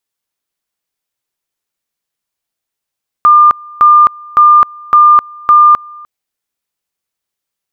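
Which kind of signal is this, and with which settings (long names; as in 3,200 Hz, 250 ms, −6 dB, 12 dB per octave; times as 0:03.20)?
tone at two levels in turn 1,200 Hz −1.5 dBFS, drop 26.5 dB, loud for 0.26 s, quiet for 0.30 s, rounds 5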